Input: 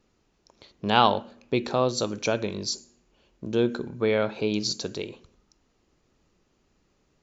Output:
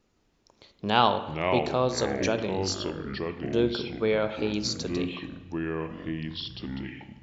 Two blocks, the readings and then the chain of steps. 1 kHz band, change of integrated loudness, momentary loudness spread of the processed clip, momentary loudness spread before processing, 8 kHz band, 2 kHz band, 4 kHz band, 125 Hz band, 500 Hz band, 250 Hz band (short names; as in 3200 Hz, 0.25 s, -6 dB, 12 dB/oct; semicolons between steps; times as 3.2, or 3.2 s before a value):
-1.0 dB, -2.0 dB, 11 LU, 13 LU, n/a, 0.0 dB, -1.0 dB, +1.5 dB, -0.5 dB, +0.5 dB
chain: echoes that change speed 0.165 s, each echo -5 st, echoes 3, each echo -6 dB; spring tank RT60 1.2 s, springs 31/41/48 ms, chirp 65 ms, DRR 11.5 dB; gain -2 dB